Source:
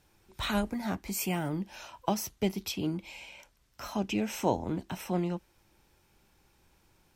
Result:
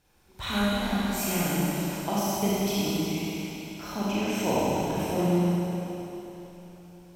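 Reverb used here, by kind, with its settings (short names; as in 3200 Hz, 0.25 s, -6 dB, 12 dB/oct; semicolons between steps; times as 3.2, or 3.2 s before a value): Schroeder reverb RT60 3.6 s, combs from 31 ms, DRR -8.5 dB; gain -3 dB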